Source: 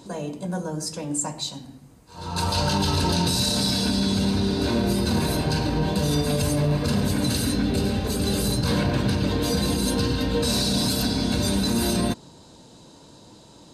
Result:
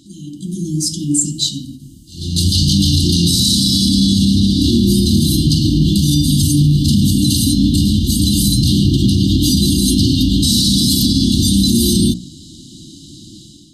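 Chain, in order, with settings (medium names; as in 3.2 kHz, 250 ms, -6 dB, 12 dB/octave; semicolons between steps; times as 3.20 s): brick-wall FIR band-stop 360–2800 Hz; hum notches 60/120/180/240/300 Hz; peak limiter -17.5 dBFS, peak gain reduction 5.5 dB; level rider gain up to 12 dB; endings held to a fixed fall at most 230 dB/s; trim +1.5 dB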